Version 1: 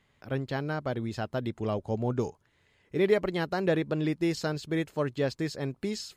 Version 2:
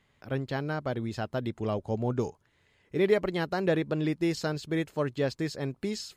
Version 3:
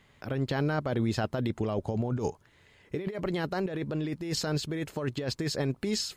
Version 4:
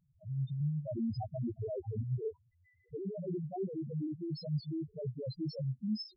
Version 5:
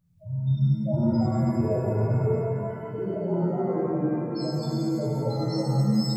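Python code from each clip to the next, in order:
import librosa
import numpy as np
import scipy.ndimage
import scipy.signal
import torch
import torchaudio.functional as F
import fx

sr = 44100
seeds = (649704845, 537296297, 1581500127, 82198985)

y1 = x
y2 = fx.over_compress(y1, sr, threshold_db=-33.0, ratio=-1.0)
y2 = F.gain(torch.from_numpy(y2), 3.0).numpy()
y3 = fx.spec_topn(y2, sr, count=1)
y3 = F.gain(torch.from_numpy(y3), 2.5).numpy()
y4 = fx.rev_shimmer(y3, sr, seeds[0], rt60_s=2.5, semitones=7, shimmer_db=-8, drr_db=-7.5)
y4 = F.gain(torch.from_numpy(y4), 4.0).numpy()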